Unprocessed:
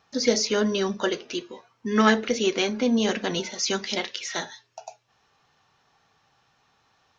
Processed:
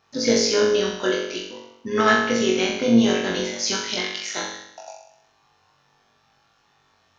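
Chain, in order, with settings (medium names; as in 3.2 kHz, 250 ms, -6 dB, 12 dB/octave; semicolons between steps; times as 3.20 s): flutter echo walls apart 3.7 m, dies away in 0.77 s; AM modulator 110 Hz, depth 25%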